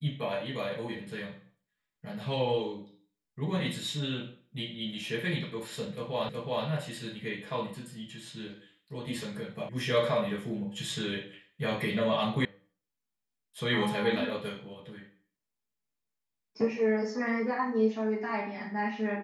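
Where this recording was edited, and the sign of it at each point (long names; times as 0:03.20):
0:06.29: the same again, the last 0.37 s
0:09.69: cut off before it has died away
0:12.45: cut off before it has died away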